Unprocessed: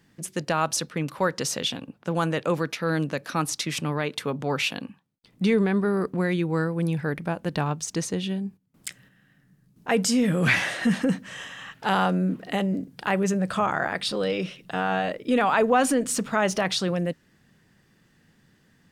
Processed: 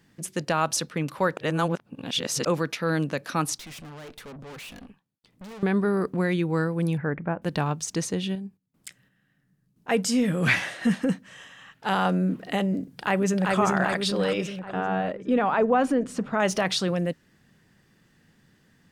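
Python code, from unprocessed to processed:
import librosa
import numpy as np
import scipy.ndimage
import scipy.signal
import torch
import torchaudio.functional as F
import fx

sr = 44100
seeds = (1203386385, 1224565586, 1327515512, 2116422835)

y = fx.tube_stage(x, sr, drive_db=40.0, bias=0.75, at=(3.58, 5.63))
y = fx.lowpass(y, sr, hz=2100.0, slope=24, at=(6.97, 7.42))
y = fx.upward_expand(y, sr, threshold_db=-34.0, expansion=1.5, at=(8.35, 12.05))
y = fx.echo_throw(y, sr, start_s=12.81, length_s=0.74, ms=390, feedback_pct=60, wet_db=-2.0)
y = fx.lowpass(y, sr, hz=1200.0, slope=6, at=(14.59, 16.4))
y = fx.edit(y, sr, fx.reverse_span(start_s=1.37, length_s=1.09), tone=tone)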